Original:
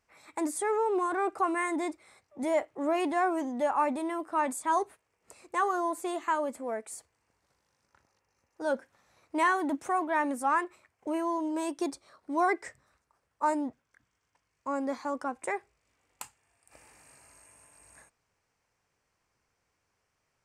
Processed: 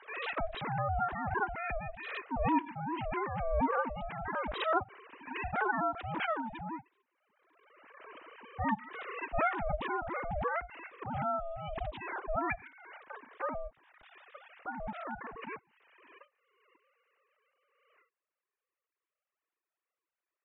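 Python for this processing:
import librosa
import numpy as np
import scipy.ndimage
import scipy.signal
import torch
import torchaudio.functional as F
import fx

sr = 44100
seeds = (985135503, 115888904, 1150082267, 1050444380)

y = fx.sine_speech(x, sr)
y = y * np.sin(2.0 * np.pi * 330.0 * np.arange(len(y)) / sr)
y = fx.pre_swell(y, sr, db_per_s=34.0)
y = F.gain(torch.from_numpy(y), -4.0).numpy()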